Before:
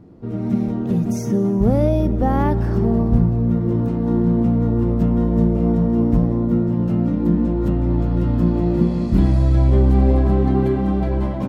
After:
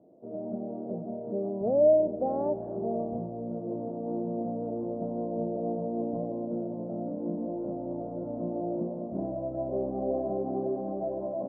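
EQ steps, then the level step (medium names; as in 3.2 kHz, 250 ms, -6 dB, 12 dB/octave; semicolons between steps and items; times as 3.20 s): high-pass 280 Hz 12 dB/octave; four-pole ladder low-pass 680 Hz, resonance 75%; distance through air 300 m; 0.0 dB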